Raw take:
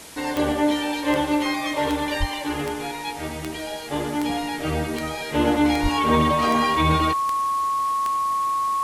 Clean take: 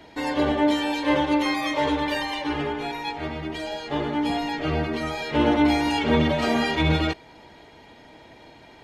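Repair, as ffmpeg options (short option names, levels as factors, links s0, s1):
-filter_complex "[0:a]adeclick=t=4,bandreject=f=1100:w=30,asplit=3[s0][s1][s2];[s0]afade=t=out:st=2.19:d=0.02[s3];[s1]highpass=f=140:w=0.5412,highpass=f=140:w=1.3066,afade=t=in:st=2.19:d=0.02,afade=t=out:st=2.31:d=0.02[s4];[s2]afade=t=in:st=2.31:d=0.02[s5];[s3][s4][s5]amix=inputs=3:normalize=0,asplit=3[s6][s7][s8];[s6]afade=t=out:st=5.82:d=0.02[s9];[s7]highpass=f=140:w=0.5412,highpass=f=140:w=1.3066,afade=t=in:st=5.82:d=0.02,afade=t=out:st=5.94:d=0.02[s10];[s8]afade=t=in:st=5.94:d=0.02[s11];[s9][s10][s11]amix=inputs=3:normalize=0,afwtdn=0.0089"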